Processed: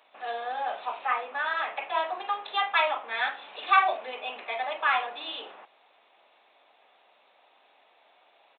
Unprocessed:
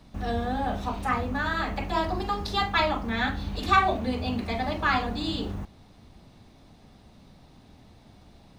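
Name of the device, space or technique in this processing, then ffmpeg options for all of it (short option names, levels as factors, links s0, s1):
musical greeting card: -af "aresample=8000,aresample=44100,highpass=f=560:w=0.5412,highpass=f=560:w=1.3066,equalizer=f=2500:t=o:w=0.25:g=5"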